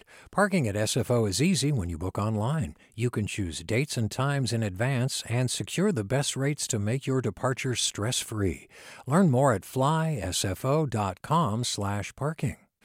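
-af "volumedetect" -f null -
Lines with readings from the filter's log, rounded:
mean_volume: -27.3 dB
max_volume: -9.6 dB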